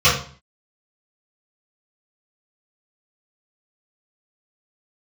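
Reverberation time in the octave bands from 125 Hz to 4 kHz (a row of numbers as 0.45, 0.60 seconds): 0.55, 0.55, 0.40, 0.45, 0.40, 0.40 seconds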